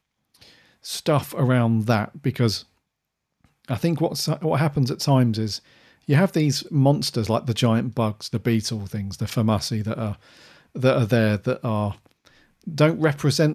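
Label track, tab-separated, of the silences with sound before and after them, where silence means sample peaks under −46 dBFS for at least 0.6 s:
2.640000	3.440000	silence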